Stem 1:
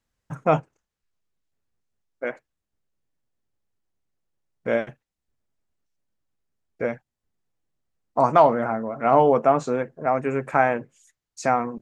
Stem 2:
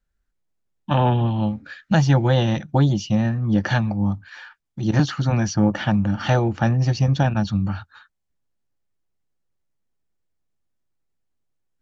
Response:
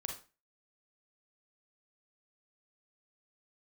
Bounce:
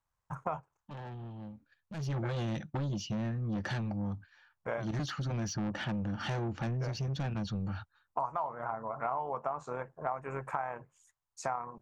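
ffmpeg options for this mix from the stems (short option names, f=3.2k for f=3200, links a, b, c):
-filter_complex "[0:a]tremolo=f=87:d=0.4,alimiter=limit=-10dB:level=0:latency=1:release=393,equalizer=f=125:t=o:w=1:g=4,equalizer=f=250:t=o:w=1:g=-10,equalizer=f=500:t=o:w=1:g=-3,equalizer=f=1k:t=o:w=1:g=12,equalizer=f=2k:t=o:w=1:g=-3,equalizer=f=4k:t=o:w=1:g=-4,volume=-5.5dB[a];[1:a]agate=range=-15dB:threshold=-34dB:ratio=16:detection=peak,asoftclip=type=tanh:threshold=-20dB,volume=-7.5dB,afade=t=in:st=1.94:d=0.21:silence=0.237137,asplit=2[b][c];[c]apad=whole_len=520864[d];[a][d]sidechaincompress=threshold=-34dB:ratio=8:attack=16:release=390[e];[e][b]amix=inputs=2:normalize=0,acompressor=threshold=-32dB:ratio=5"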